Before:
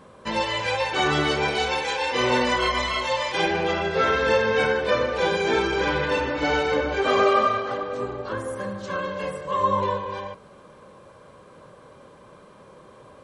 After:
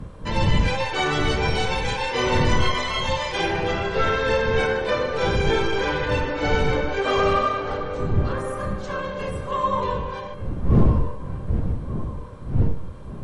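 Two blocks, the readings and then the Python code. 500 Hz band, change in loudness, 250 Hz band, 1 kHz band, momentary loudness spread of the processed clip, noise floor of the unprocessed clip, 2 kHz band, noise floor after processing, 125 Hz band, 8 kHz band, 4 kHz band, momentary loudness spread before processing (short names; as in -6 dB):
-0.5 dB, 0.0 dB, +3.0 dB, -1.0 dB, 9 LU, -49 dBFS, -1.0 dB, -34 dBFS, +11.5 dB, +0.5 dB, -0.5 dB, 10 LU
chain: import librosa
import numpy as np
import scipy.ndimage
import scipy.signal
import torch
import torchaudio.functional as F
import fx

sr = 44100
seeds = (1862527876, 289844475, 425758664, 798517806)

p1 = fx.dmg_wind(x, sr, seeds[0], corner_hz=120.0, level_db=-23.0)
p2 = 10.0 ** (-11.0 / 20.0) * np.tanh(p1 / 10.0 ** (-11.0 / 20.0))
p3 = p1 + F.gain(torch.from_numpy(p2), -8.0).numpy()
p4 = fx.comb_fb(p3, sr, f0_hz=460.0, decay_s=0.69, harmonics='all', damping=0.0, mix_pct=80)
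p5 = fx.fold_sine(p4, sr, drive_db=6, ceiling_db=-9.0)
y = p5 + fx.echo_wet_lowpass(p5, sr, ms=1179, feedback_pct=36, hz=1700.0, wet_db=-12.5, dry=0)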